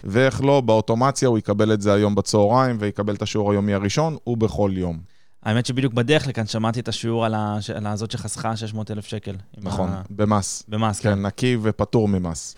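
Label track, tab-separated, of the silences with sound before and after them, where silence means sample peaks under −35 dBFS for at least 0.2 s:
5.030000	5.450000	silence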